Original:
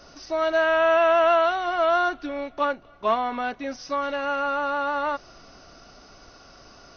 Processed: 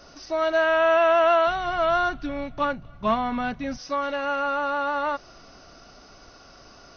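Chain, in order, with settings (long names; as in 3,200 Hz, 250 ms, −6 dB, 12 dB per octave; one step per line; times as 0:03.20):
0:01.47–0:03.78: low shelf with overshoot 240 Hz +13.5 dB, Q 1.5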